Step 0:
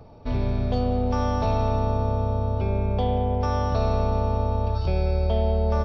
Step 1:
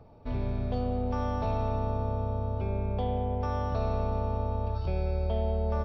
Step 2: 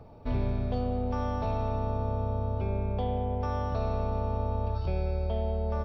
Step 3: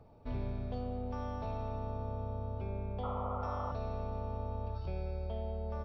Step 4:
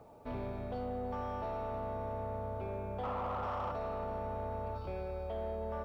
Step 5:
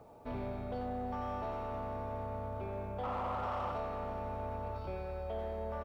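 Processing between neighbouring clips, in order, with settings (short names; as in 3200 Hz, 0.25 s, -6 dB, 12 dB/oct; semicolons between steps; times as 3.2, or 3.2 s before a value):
tone controls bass 0 dB, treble -8 dB; gain -6.5 dB
vocal rider within 4 dB 0.5 s
painted sound noise, 3.03–3.72, 500–1400 Hz -33 dBFS; gain -8.5 dB
split-band echo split 350 Hz, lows 0.243 s, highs 0.324 s, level -15 dB; overdrive pedal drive 20 dB, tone 1100 Hz, clips at -24 dBFS; requantised 12-bit, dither none; gain -3.5 dB
speakerphone echo 90 ms, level -8 dB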